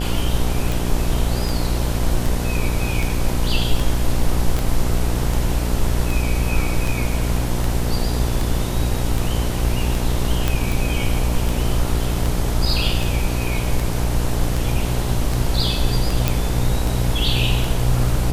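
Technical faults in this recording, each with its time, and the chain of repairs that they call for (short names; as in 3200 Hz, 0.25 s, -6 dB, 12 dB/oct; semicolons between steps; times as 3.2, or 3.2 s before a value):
buzz 60 Hz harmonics 17 -23 dBFS
tick 78 rpm
4.59 pop
10.48 pop
16.28 pop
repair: de-click; de-hum 60 Hz, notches 17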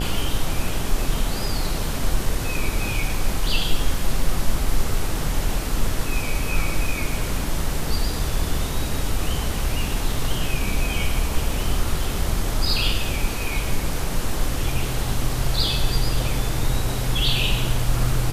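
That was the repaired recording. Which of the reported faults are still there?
4.59 pop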